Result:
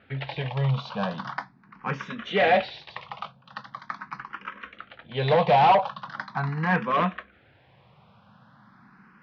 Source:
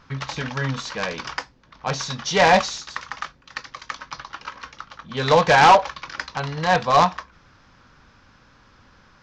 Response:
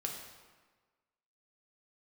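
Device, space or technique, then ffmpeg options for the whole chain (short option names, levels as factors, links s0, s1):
barber-pole phaser into a guitar amplifier: -filter_complex "[0:a]asplit=2[s0][s1];[s1]afreqshift=0.41[s2];[s0][s2]amix=inputs=2:normalize=1,asoftclip=type=tanh:threshold=0.15,highpass=110,equalizer=f=130:t=q:w=4:g=6,equalizer=f=200:t=q:w=4:g=10,equalizer=f=280:t=q:w=4:g=-3,equalizer=f=710:t=q:w=4:g=5,lowpass=f=3400:w=0.5412,lowpass=f=3400:w=1.3066"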